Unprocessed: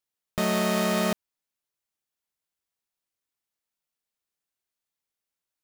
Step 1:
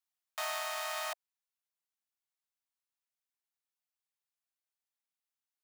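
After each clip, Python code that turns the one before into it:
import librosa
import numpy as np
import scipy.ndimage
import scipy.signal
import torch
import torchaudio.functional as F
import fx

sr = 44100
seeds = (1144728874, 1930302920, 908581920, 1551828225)

y = scipy.signal.sosfilt(scipy.signal.butter(12, 660.0, 'highpass', fs=sr, output='sos'), x)
y = fx.rider(y, sr, range_db=3, speed_s=0.5)
y = F.gain(torch.from_numpy(y), -6.5).numpy()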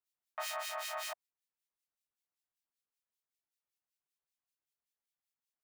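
y = fx.harmonic_tremolo(x, sr, hz=5.2, depth_pct=100, crossover_hz=1900.0)
y = F.gain(torch.from_numpy(y), 2.0).numpy()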